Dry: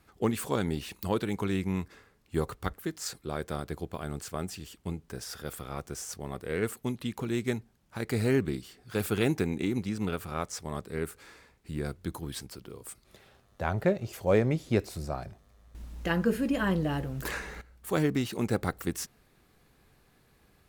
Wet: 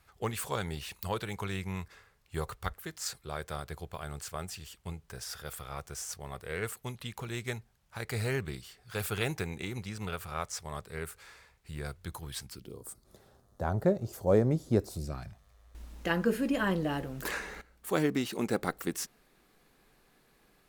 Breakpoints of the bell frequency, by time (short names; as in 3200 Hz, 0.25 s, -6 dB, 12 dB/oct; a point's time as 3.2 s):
bell -14.5 dB 1.2 oct
12.4 s 270 Hz
12.8 s 2500 Hz
14.87 s 2500 Hz
15.22 s 490 Hz
16.02 s 85 Hz